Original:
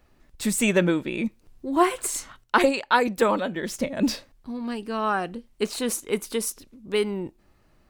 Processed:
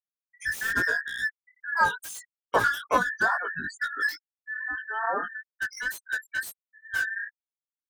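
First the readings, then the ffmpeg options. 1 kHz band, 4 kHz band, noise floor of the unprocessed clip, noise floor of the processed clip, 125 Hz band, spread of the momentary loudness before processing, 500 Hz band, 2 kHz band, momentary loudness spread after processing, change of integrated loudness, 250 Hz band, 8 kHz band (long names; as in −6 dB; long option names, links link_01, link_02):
−2.5 dB, −7.0 dB, −61 dBFS, below −85 dBFS, −12.5 dB, 13 LU, −11.0 dB, +5.5 dB, 12 LU, −3.0 dB, −18.5 dB, −10.5 dB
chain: -filter_complex "[0:a]afftfilt=real='real(if(between(b,1,1012),(2*floor((b-1)/92)+1)*92-b,b),0)':imag='imag(if(between(b,1,1012),(2*floor((b-1)/92)+1)*92-b,b),0)*if(between(b,1,1012),-1,1)':win_size=2048:overlap=0.75,afftfilt=real='re*gte(hypot(re,im),0.0501)':imag='im*gte(hypot(re,im),0.0501)':win_size=1024:overlap=0.75,acrossover=split=290|990|1900[link_01][link_02][link_03][link_04];[link_04]aeval=exprs='0.0282*(abs(mod(val(0)/0.0282+3,4)-2)-1)':channel_layout=same[link_05];[link_01][link_02][link_03][link_05]amix=inputs=4:normalize=0,flanger=delay=16.5:depth=4.2:speed=2.3,equalizer=frequency=14000:width_type=o:width=0.33:gain=3"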